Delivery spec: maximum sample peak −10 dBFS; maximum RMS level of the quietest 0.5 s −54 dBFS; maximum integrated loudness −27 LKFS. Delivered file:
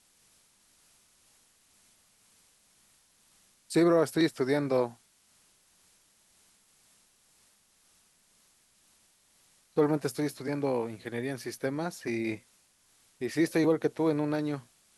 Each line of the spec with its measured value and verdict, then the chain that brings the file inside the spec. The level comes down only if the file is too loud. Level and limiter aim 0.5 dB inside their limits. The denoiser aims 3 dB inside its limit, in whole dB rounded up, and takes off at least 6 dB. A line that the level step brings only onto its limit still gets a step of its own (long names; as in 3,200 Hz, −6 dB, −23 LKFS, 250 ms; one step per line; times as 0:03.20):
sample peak −13.5 dBFS: in spec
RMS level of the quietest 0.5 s −66 dBFS: in spec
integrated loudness −30.0 LKFS: in spec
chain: no processing needed